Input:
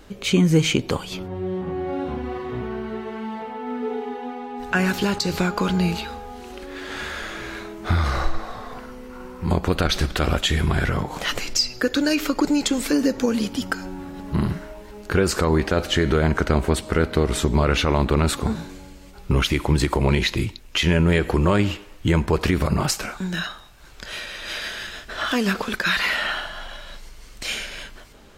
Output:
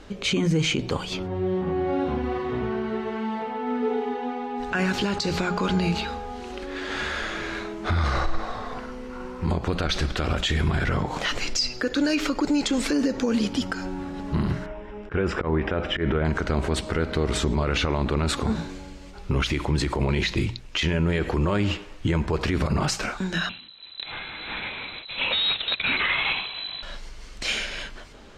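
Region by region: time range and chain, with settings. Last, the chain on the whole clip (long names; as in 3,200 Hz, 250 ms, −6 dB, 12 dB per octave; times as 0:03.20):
0:14.66–0:16.25: Savitzky-Golay smoothing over 25 samples + volume swells 125 ms
0:23.49–0:26.83: each half-wave held at its own peak + voice inversion scrambler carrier 4,000 Hz + expander for the loud parts, over −28 dBFS
whole clip: low-pass filter 6,800 Hz 12 dB per octave; mains-hum notches 60/120/180 Hz; brickwall limiter −17 dBFS; level +2 dB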